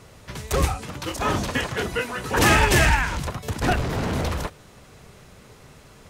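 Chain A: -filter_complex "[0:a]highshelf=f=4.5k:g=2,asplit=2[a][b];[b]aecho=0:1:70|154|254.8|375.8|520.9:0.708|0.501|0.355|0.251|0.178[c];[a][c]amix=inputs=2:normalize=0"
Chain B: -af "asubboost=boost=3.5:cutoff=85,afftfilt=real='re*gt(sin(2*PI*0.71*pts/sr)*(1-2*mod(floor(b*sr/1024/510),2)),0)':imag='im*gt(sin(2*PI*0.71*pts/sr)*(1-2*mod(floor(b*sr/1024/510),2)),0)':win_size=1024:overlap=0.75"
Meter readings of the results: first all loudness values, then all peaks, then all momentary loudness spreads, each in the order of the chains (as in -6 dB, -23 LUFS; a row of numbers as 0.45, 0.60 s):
-19.5, -25.0 LUFS; -2.5, -5.5 dBFS; 16, 15 LU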